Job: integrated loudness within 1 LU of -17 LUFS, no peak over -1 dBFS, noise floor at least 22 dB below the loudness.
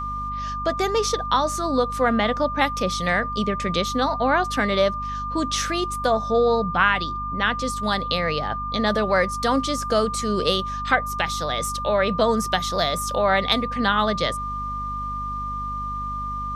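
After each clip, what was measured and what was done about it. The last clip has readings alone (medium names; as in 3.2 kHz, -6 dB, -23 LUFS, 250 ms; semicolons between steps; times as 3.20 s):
hum 50 Hz; highest harmonic 250 Hz; hum level -32 dBFS; steady tone 1.2 kHz; tone level -27 dBFS; loudness -22.5 LUFS; peak level -4.5 dBFS; loudness target -17.0 LUFS
-> de-hum 50 Hz, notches 5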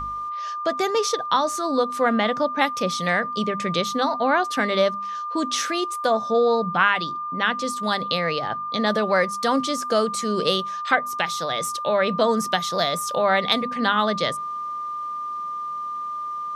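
hum not found; steady tone 1.2 kHz; tone level -27 dBFS
-> band-stop 1.2 kHz, Q 30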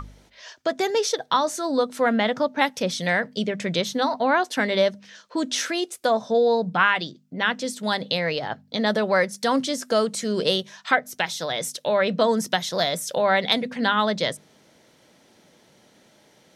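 steady tone not found; loudness -23.5 LUFS; peak level -5.5 dBFS; loudness target -17.0 LUFS
-> trim +6.5 dB; peak limiter -1 dBFS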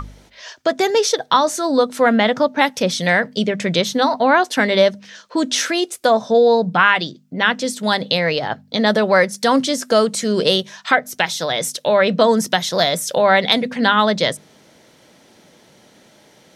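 loudness -17.0 LUFS; peak level -1.0 dBFS; noise floor -51 dBFS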